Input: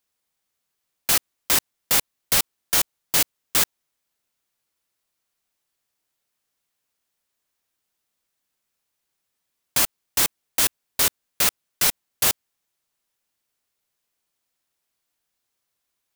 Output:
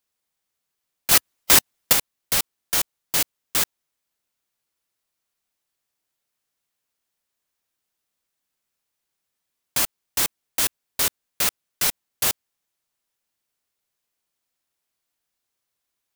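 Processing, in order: 1.11–1.93 s: harmonic-percussive split percussive +8 dB; trim -2 dB

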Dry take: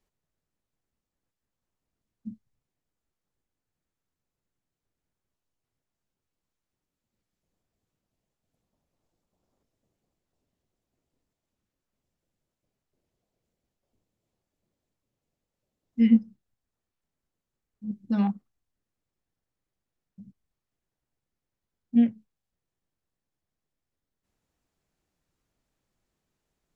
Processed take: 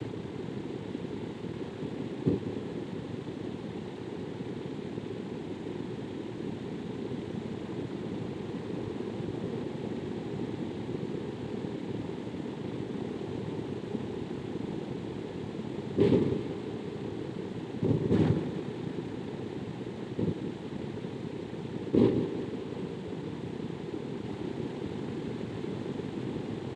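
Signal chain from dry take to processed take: spectral levelling over time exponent 0.2; bass shelf 200 Hz +3.5 dB; band-stop 1.2 kHz, Q 5.5; comb 6.8 ms, depth 38%; noise-vocoded speech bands 6; thinning echo 188 ms, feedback 79%, high-pass 190 Hz, level -10.5 dB; trim -6 dB

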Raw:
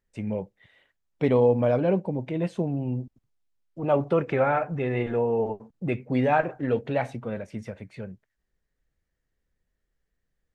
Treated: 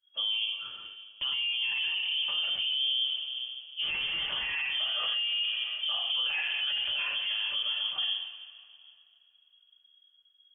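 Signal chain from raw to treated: 3.81–4.52 s: block-companded coder 3-bit; bass shelf 76 Hz +10 dB; in parallel at 0 dB: compression, threshold -32 dBFS, peak gain reduction 16 dB; on the sum: two-slope reverb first 0.4 s, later 3.3 s, from -20 dB, DRR -8 dB; peak limiter -18.5 dBFS, peak gain reduction 19.5 dB; frequency inversion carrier 3.3 kHz; three bands expanded up and down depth 40%; trim -6 dB

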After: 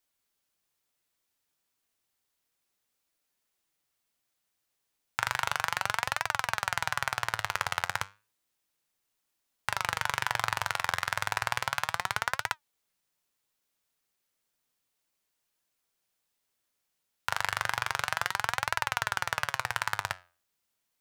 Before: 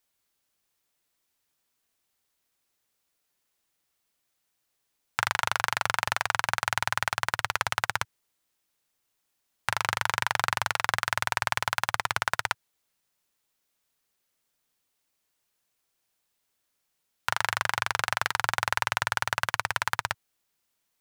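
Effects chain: flange 0.32 Hz, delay 2.9 ms, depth 8.7 ms, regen +81%; trim +1.5 dB

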